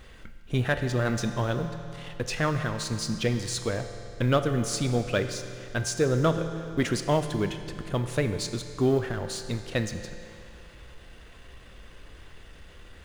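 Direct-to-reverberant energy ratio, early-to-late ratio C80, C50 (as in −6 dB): 7.0 dB, 9.0 dB, 8.0 dB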